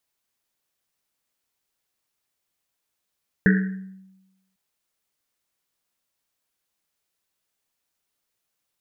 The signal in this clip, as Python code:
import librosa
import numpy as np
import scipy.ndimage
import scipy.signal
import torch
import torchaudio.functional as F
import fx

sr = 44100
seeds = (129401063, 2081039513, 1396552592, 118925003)

y = fx.risset_drum(sr, seeds[0], length_s=1.1, hz=190.0, decay_s=1.05, noise_hz=1700.0, noise_width_hz=390.0, noise_pct=25)